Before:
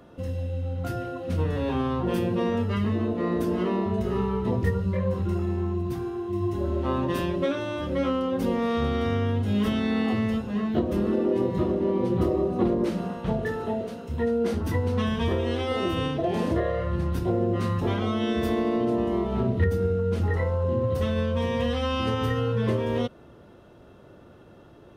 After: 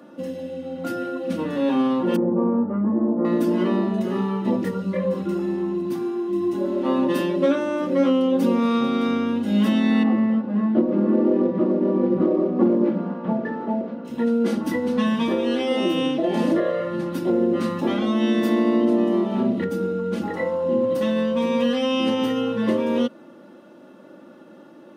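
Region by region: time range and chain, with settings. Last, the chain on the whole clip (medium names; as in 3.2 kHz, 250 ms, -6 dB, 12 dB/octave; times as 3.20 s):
2.16–3.25 s: self-modulated delay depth 0.11 ms + low-pass 1.1 kHz 24 dB/octave
10.03–14.05 s: CVSD coder 32 kbps + low-pass 1.4 kHz
whole clip: steep high-pass 160 Hz 36 dB/octave; bass shelf 260 Hz +5.5 dB; comb 3.5 ms, depth 63%; trim +2 dB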